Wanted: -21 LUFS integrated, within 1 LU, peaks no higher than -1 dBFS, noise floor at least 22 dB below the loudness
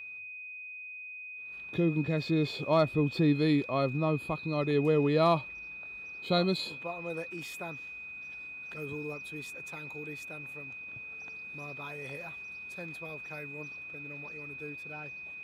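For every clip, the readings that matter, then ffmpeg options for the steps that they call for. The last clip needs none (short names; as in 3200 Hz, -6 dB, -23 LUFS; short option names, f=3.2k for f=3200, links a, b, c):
steady tone 2500 Hz; tone level -41 dBFS; loudness -33.0 LUFS; peak -15.5 dBFS; loudness target -21.0 LUFS
-> -af "bandreject=f=2.5k:w=30"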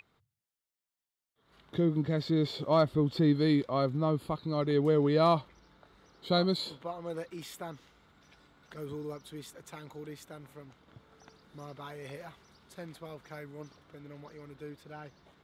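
steady tone none; loudness -30.0 LUFS; peak -15.5 dBFS; loudness target -21.0 LUFS
-> -af "volume=9dB"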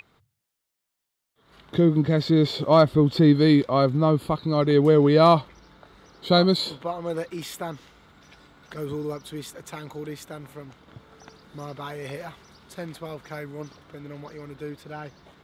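loudness -21.0 LUFS; peak -6.5 dBFS; noise floor -82 dBFS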